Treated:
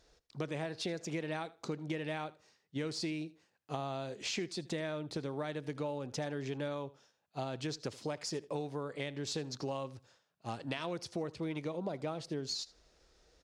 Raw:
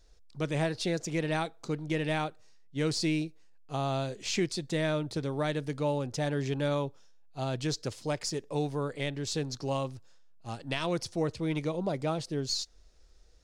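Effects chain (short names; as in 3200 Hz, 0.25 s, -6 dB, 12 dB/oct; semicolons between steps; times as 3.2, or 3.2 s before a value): HPF 200 Hz 6 dB/oct; high shelf 5600 Hz -8.5 dB; compressor 6:1, threshold -39 dBFS, peak gain reduction 12.5 dB; on a send: feedback echo 79 ms, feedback 17%, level -20.5 dB; on the sum: gain +4 dB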